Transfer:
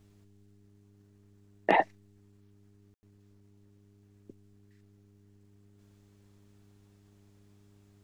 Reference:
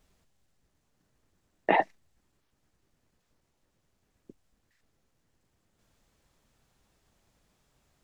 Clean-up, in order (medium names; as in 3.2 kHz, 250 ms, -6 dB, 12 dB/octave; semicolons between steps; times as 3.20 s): clip repair -9.5 dBFS; de-hum 101 Hz, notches 4; room tone fill 2.94–3.03 s